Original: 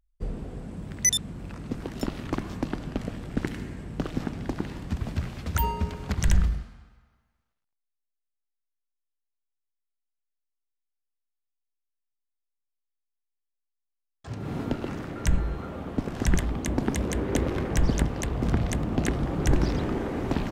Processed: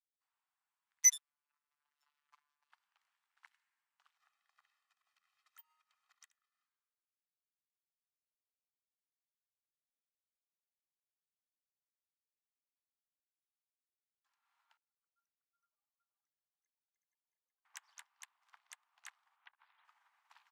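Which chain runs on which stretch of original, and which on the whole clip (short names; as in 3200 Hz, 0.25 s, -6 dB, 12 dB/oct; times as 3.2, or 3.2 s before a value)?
1.01–2.7 half-wave gain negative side -3 dB + robotiser 146 Hz + mismatched tape noise reduction decoder only
4.17–6.66 comb 1.6 ms, depth 83% + compressor 10:1, threshold -25 dBFS
14.77–17.65 spectral contrast raised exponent 2.9 + echo 0.371 s -3.5 dB
19.36–19.85 steep low-pass 3600 Hz + core saturation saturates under 84 Hz
whole clip: steep high-pass 890 Hz 48 dB/oct; upward expander 2.5:1, over -45 dBFS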